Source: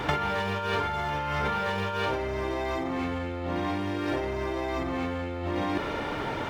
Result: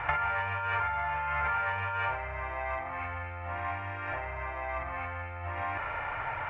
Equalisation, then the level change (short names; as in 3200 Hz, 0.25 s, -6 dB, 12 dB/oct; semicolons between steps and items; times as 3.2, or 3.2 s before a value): EQ curve 110 Hz 0 dB, 210 Hz -19 dB, 390 Hz -17 dB, 700 Hz +2 dB, 1700 Hz +5 dB, 2500 Hz +4 dB, 3900 Hz -23 dB, 6300 Hz -21 dB, 9500 Hz -25 dB; -4.0 dB